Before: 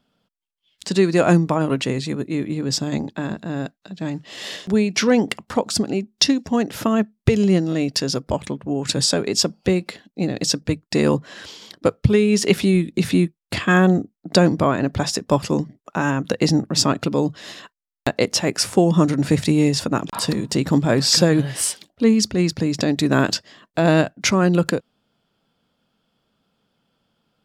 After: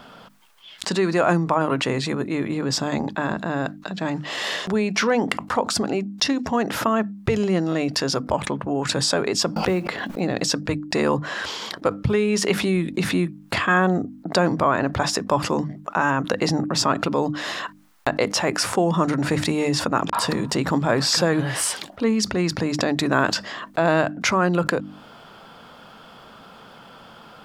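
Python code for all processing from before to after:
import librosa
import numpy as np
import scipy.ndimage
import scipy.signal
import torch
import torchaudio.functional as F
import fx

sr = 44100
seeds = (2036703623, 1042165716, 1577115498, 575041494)

y = fx.chain(x, sr, fx.high_shelf(hz=4500.0, db=-10.0),
    fx.quant_float(bits=4),
    fx.pre_swell(db_per_s=59.0), at=(9.56, 10.2))
y = fx.peak_eq(y, sr, hz=1100.0, db=11.0, octaves=2.0)
y = fx.hum_notches(y, sr, base_hz=50, count=6)
y = fx.env_flatten(y, sr, amount_pct=50)
y = y * 10.0 ** (-9.5 / 20.0)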